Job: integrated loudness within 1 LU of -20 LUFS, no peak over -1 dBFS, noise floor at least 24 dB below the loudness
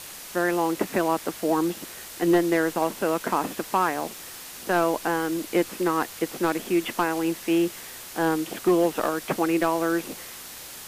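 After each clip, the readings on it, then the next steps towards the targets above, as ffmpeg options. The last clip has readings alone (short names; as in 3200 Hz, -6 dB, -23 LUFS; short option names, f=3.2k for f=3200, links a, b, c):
noise floor -41 dBFS; noise floor target -49 dBFS; loudness -25.0 LUFS; peak -11.5 dBFS; loudness target -20.0 LUFS
-> -af "afftdn=nr=8:nf=-41"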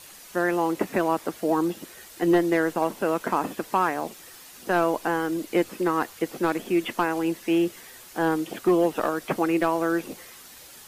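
noise floor -47 dBFS; noise floor target -50 dBFS
-> -af "afftdn=nr=6:nf=-47"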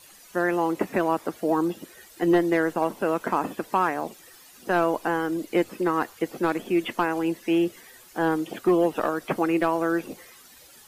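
noise floor -51 dBFS; loudness -25.5 LUFS; peak -12.0 dBFS; loudness target -20.0 LUFS
-> -af "volume=5.5dB"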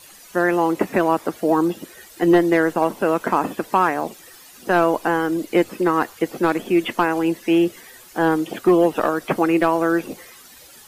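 loudness -20.0 LUFS; peak -6.5 dBFS; noise floor -45 dBFS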